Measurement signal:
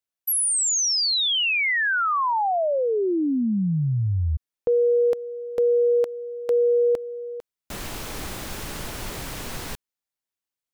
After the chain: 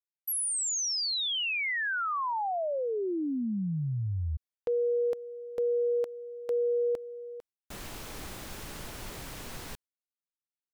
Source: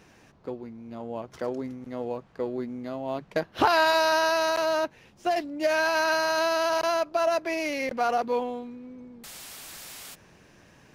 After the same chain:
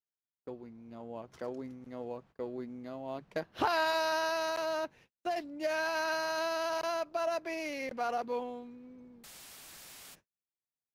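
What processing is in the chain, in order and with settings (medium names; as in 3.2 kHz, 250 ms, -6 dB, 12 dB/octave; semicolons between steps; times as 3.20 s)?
gate -48 dBFS, range -46 dB; trim -8.5 dB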